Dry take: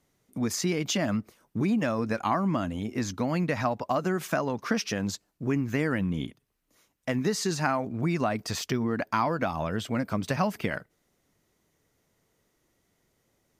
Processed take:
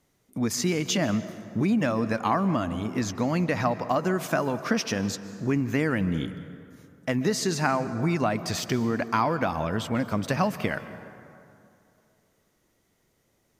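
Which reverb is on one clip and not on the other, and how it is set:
dense smooth reverb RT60 2.6 s, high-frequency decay 0.5×, pre-delay 120 ms, DRR 13 dB
level +2 dB

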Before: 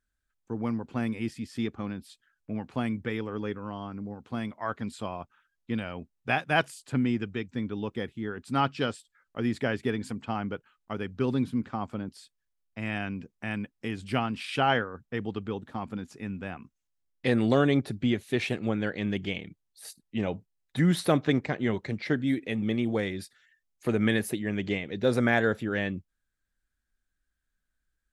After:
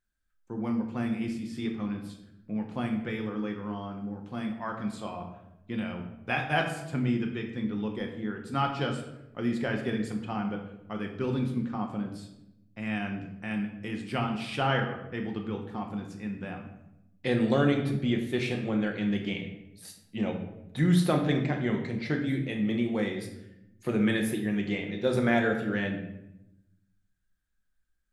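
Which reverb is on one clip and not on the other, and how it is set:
rectangular room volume 280 cubic metres, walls mixed, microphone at 0.9 metres
level −3.5 dB

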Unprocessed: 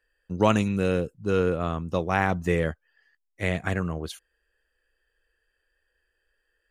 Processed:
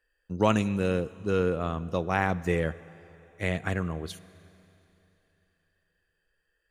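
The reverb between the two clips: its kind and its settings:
four-comb reverb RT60 3.3 s, combs from 33 ms, DRR 18 dB
level −2.5 dB

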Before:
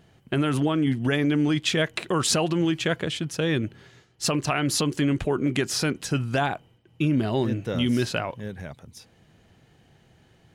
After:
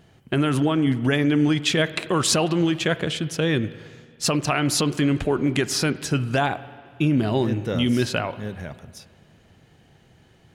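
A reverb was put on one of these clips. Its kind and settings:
spring reverb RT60 2 s, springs 47/56 ms, chirp 50 ms, DRR 15 dB
level +2.5 dB

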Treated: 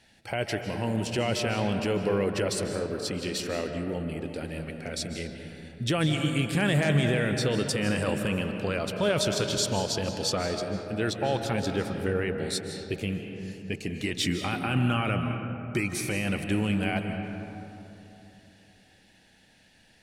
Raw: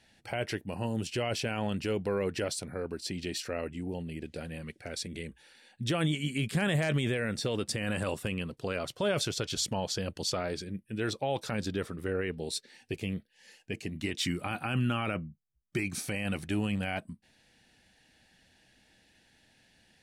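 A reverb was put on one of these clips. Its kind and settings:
comb and all-pass reverb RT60 3.2 s, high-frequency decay 0.35×, pre-delay 115 ms, DRR 5 dB
level +3.5 dB

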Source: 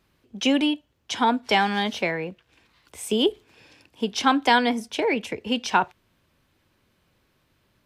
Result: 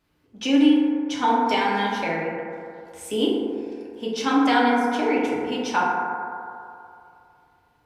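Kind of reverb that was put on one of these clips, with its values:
feedback delay network reverb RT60 2.6 s, low-frequency decay 0.75×, high-frequency decay 0.25×, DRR −5.5 dB
level −6.5 dB

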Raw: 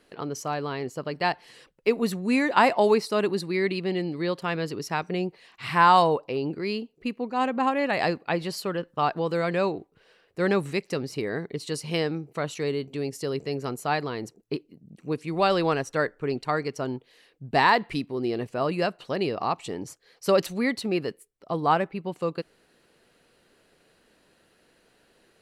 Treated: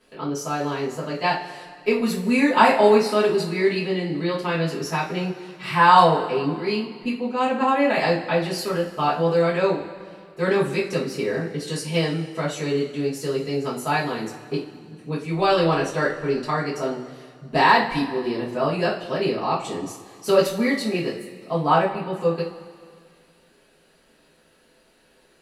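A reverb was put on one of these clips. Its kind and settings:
coupled-rooms reverb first 0.31 s, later 2.1 s, from −18 dB, DRR −8.5 dB
level −5 dB

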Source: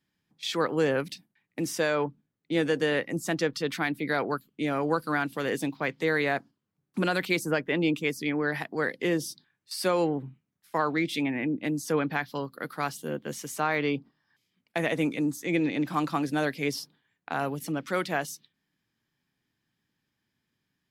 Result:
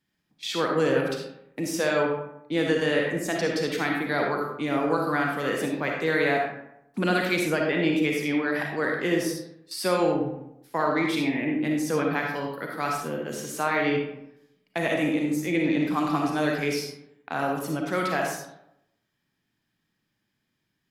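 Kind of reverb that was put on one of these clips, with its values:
comb and all-pass reverb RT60 0.81 s, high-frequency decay 0.55×, pre-delay 15 ms, DRR 0 dB

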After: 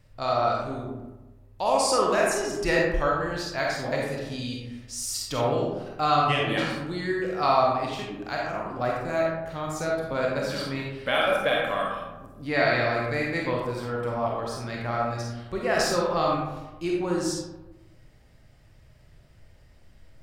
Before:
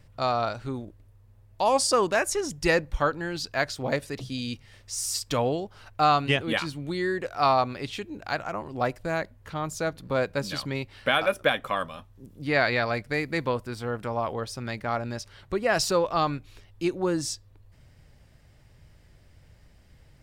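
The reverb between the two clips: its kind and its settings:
comb and all-pass reverb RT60 1.1 s, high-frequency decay 0.45×, pre-delay 5 ms, DRR −3 dB
level −4 dB

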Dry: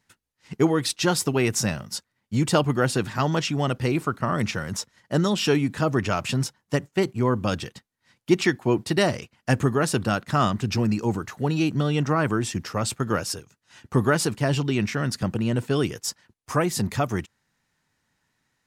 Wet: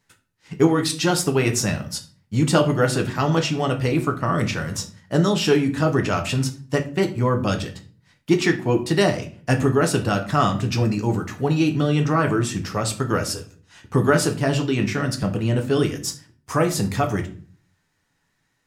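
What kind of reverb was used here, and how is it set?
rectangular room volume 34 cubic metres, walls mixed, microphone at 0.35 metres
level +1 dB

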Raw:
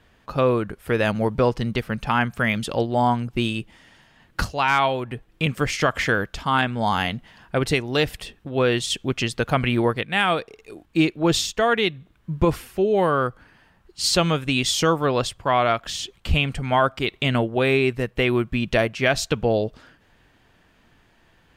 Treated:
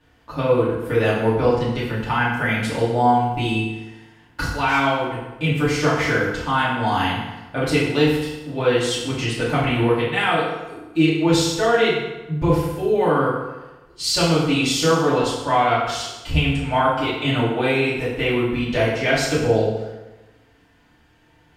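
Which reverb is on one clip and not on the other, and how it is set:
feedback delay network reverb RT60 1.1 s, low-frequency decay 0.95×, high-frequency decay 0.75×, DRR −9 dB
level −8 dB

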